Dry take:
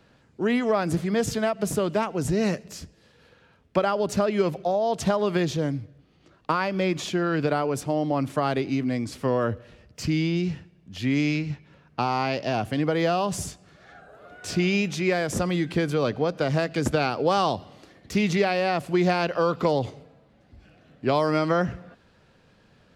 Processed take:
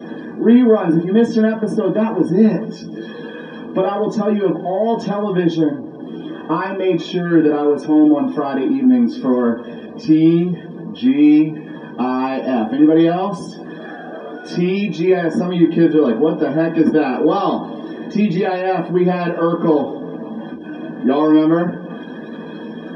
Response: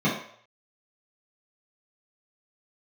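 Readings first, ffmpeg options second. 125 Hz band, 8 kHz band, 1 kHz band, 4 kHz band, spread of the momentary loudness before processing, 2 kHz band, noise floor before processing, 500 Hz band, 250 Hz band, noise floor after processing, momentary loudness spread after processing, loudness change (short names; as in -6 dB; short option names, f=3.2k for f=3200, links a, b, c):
+4.5 dB, n/a, +4.0 dB, +0.5 dB, 8 LU, +2.5 dB, -60 dBFS, +7.5 dB, +13.0 dB, -32 dBFS, 18 LU, +9.0 dB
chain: -filter_complex "[0:a]aeval=exprs='val(0)+0.5*0.0335*sgn(val(0))':c=same[a];[1:a]atrim=start_sample=2205,asetrate=66150,aresample=44100[b];[a][b]afir=irnorm=-1:irlink=0,afftdn=nr=21:nf=-27,volume=-10.5dB"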